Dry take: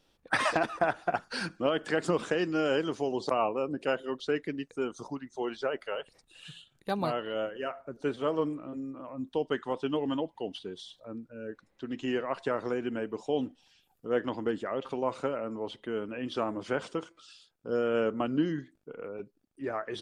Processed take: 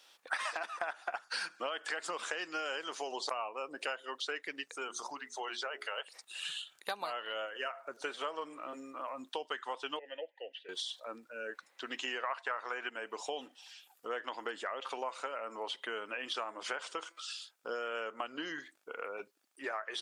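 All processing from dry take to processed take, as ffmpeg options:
-filter_complex "[0:a]asettb=1/sr,asplit=3[a][b][c];[a]atrim=end=4.644[d];[b]atrim=start=4.64:end=5.98,asetpts=PTS-STARTPTS,afade=t=in:d=0.004:c=qsin,afade=t=out:st=1.336:d=0.004:c=qsin,bandreject=f=60:t=h:w=6,bandreject=f=120:t=h:w=6,bandreject=f=180:t=h:w=6,bandreject=f=240:t=h:w=6,bandreject=f=300:t=h:w=6,bandreject=f=360:t=h:w=6,bandreject=f=420:t=h:w=6,acompressor=threshold=-45dB:ratio=1.5:attack=3.2:release=140:knee=1:detection=peak[e];[c]atrim=start=5.976[f];[d][e]acrossfade=d=0.004:c1=hsin:c2=qsin[g];[g][f]acrossfade=d=0.004:c1=qsin:c2=hsin,asettb=1/sr,asplit=3[h][i][j];[h]atrim=end=9.994[k];[i]atrim=start=9.99:end=10.69,asetpts=PTS-STARTPTS,afade=t=in:d=0.004:c=qsin,afade=t=out:st=0.696:d=0.004:c=qsin,acrossover=split=4000[l][m];[m]acompressor=threshold=-58dB:ratio=4:attack=1:release=60[n];[l][n]amix=inputs=2:normalize=0,asplit=3[o][p][q];[o]bandpass=f=530:t=q:w=8,volume=0dB[r];[p]bandpass=f=1.84k:t=q:w=8,volume=-6dB[s];[q]bandpass=f=2.48k:t=q:w=8,volume=-9dB[t];[r][s][t]amix=inputs=3:normalize=0,equalizer=f=2k:w=2.5:g=8[u];[j]atrim=start=10.686[v];[k][u]acrossfade=d=0.004:c1=hsin:c2=qsin[w];[w][v]acrossfade=d=0.004:c1=qsin:c2=hsin,asettb=1/sr,asplit=3[x][y][z];[x]atrim=end=12.234[aa];[y]atrim=start=12.23:end=12.9,asetpts=PTS-STARTPTS,afade=t=in:d=0.004:c=qsin,afade=t=out:st=0.666:d=0.004:c=qsin,equalizer=f=1.3k:t=o:w=2.9:g=11.5,agate=range=-33dB:threshold=-38dB:ratio=3:release=100:detection=peak[ab];[z]atrim=start=12.896[ac];[aa][ab]acrossfade=d=0.004:c1=hsin:c2=qsin[ad];[ad][ac]acrossfade=d=0.004:c1=qsin:c2=hsin,highpass=950,equalizer=f=7.9k:t=o:w=0.77:g=2,acompressor=threshold=-46dB:ratio=6,volume=10.5dB"

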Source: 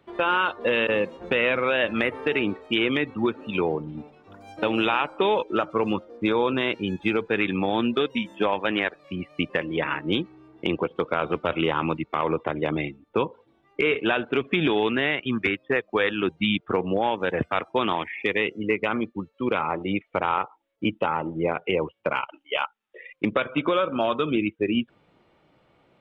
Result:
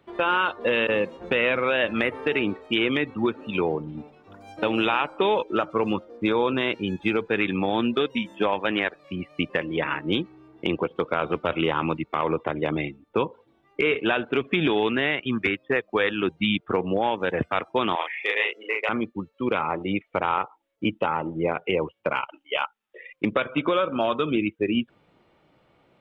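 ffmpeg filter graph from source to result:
-filter_complex "[0:a]asettb=1/sr,asplit=3[a][b][c];[a]atrim=end=17.954[d];[b]atrim=start=17.95:end=18.89,asetpts=PTS-STARTPTS,afade=t=in:d=0.004:c=qsin,afade=t=out:st=0.936:d=0.004:c=qsin,highpass=f=510:w=0.5412,highpass=f=510:w=1.3066,asplit=2[e][f];[f]adelay=36,volume=-2dB[g];[e][g]amix=inputs=2:normalize=0,atrim=end_sample=41454[h];[c]atrim=start=18.886[i];[d][h]acrossfade=d=0.004:c1=hsin:c2=qsin[j];[j][i]acrossfade=d=0.004:c1=qsin:c2=hsin"

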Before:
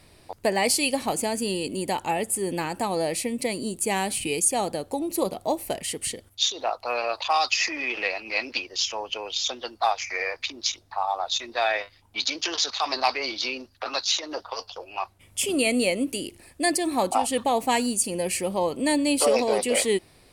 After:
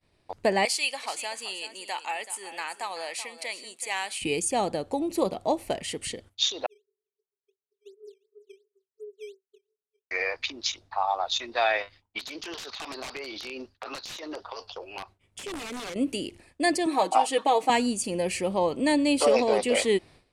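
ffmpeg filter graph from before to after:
-filter_complex "[0:a]asettb=1/sr,asplit=3[a][b][c];[a]atrim=end=0.654[d];[b]atrim=start=0.65:end=4.22,asetpts=PTS-STARTPTS,afade=t=in:d=0.004:c=qsin,afade=t=out:st=3.566:d=0.004:c=qsin,highpass=1.1k,aecho=1:1:380:0.224,atrim=end_sample=157437[e];[c]atrim=start=4.216[f];[d][e]acrossfade=d=0.004:c1=hsin:c2=qsin[g];[g][f]acrossfade=d=0.004:c1=qsin:c2=hsin,asettb=1/sr,asplit=3[h][i][j];[h]atrim=end=6.664[k];[i]atrim=start=6.66:end=10.11,asetpts=PTS-STARTPTS,afade=t=in:d=0.004:c=qsin,afade=t=out:st=3.446:d=0.004:c=qsin,asuperpass=centerf=410:order=20:qfactor=7.6,acrusher=samples=9:mix=1:aa=0.000001:lfo=1:lforange=14.4:lforate=2.8[l];[j]atrim=start=10.106[m];[k][l]acrossfade=d=0.004:c1=hsin:c2=qsin[n];[n][m]acrossfade=d=0.004:c1=qsin:c2=hsin,asettb=1/sr,asplit=3[o][p][q];[o]atrim=end=12.184[r];[p]atrim=start=12.18:end=15.96,asetpts=PTS-STARTPTS,afade=t=in:d=0.004:c=qsin,afade=t=out:st=3.776:d=0.004:c=qsin,equalizer=f=400:t=o:w=0.31:g=5.5,aeval=exprs='(mod(7.5*val(0)+1,2)-1)/7.5':c=same,acompressor=threshold=-32dB:ratio=12:attack=3.2:release=140:knee=1:detection=peak[s];[q]atrim=start=15.956[t];[r][s]acrossfade=d=0.004:c1=hsin:c2=qsin[u];[u][t]acrossfade=d=0.004:c1=qsin:c2=hsin,asettb=1/sr,asplit=3[v][w][x];[v]atrim=end=16.864[y];[w]atrim=start=16.86:end=17.7,asetpts=PTS-STARTPTS,afade=t=in:d=0.004:c=qsin,afade=t=out:st=0.836:d=0.004:c=qsin,highpass=330,aecho=1:1:6.4:0.64,atrim=end_sample=37044[z];[x]atrim=start=17.696[aa];[y][z]acrossfade=d=0.004:c1=hsin:c2=qsin[ab];[ab][aa]acrossfade=d=0.004:c1=qsin:c2=hsin,agate=range=-33dB:threshold=-44dB:ratio=3:detection=peak,lowpass=6.6k,equalizer=f=5.2k:t=o:w=0.77:g=-2.5"

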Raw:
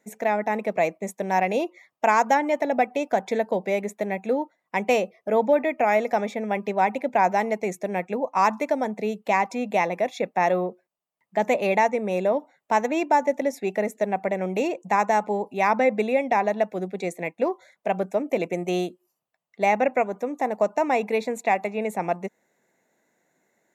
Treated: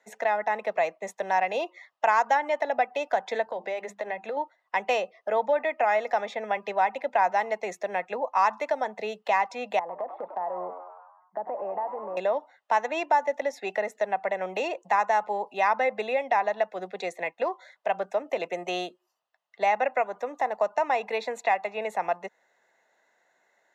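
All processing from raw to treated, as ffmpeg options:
-filter_complex "[0:a]asettb=1/sr,asplit=3[a][b][c];[a]atrim=end=3.444[d];[b]atrim=start=3.44:end=4.37,asetpts=PTS-STARTPTS,afade=t=in:d=0.004:c=qsin,afade=t=out:st=0.926:d=0.004:c=qsin,highshelf=f=5.6k:g=-5.5,bandreject=f=50:t=h:w=6,bandreject=f=100:t=h:w=6,bandreject=f=150:t=h:w=6,bandreject=f=200:t=h:w=6,bandreject=f=250:t=h:w=6,bandreject=f=300:t=h:w=6,bandreject=f=350:t=h:w=6,acompressor=threshold=-26dB:ratio=5:attack=3.2:release=140:knee=1:detection=peak[e];[c]atrim=start=4.366[f];[d][e]acrossfade=d=0.004:c1=hsin:c2=qsin[g];[g][f]acrossfade=d=0.004:c1=qsin:c2=hsin,asettb=1/sr,asplit=3[h][i][j];[h]atrim=end=9.794[k];[i]atrim=start=9.79:end=12.17,asetpts=PTS-STARTPTS,afade=t=in:d=0.004:c=qsin,afade=t=out:st=2.376:d=0.004:c=qsin,lowpass=f=1.1k:w=0.5412,lowpass=f=1.1k:w=1.3066,acompressor=threshold=-30dB:ratio=4:attack=3.2:release=140:knee=1:detection=peak,asplit=7[l][m][n][o][p][q][r];[m]adelay=99,afreqshift=91,volume=-11dB[s];[n]adelay=198,afreqshift=182,volume=-15.9dB[t];[o]adelay=297,afreqshift=273,volume=-20.8dB[u];[p]adelay=396,afreqshift=364,volume=-25.6dB[v];[q]adelay=495,afreqshift=455,volume=-30.5dB[w];[r]adelay=594,afreqshift=546,volume=-35.4dB[x];[l][s][t][u][v][w][x]amix=inputs=7:normalize=0,atrim=end_sample=104958[y];[j]atrim=start=12.166[z];[k][y]acrossfade=d=0.004:c1=hsin:c2=qsin[aa];[aa][z]acrossfade=d=0.004:c1=qsin:c2=hsin,acrossover=split=560 5400:gain=0.0891 1 0.126[ab][ac][ad];[ab][ac][ad]amix=inputs=3:normalize=0,bandreject=f=2.3k:w=6.7,acrossover=split=160[ae][af];[af]acompressor=threshold=-35dB:ratio=1.5[ag];[ae][ag]amix=inputs=2:normalize=0,volume=5.5dB"

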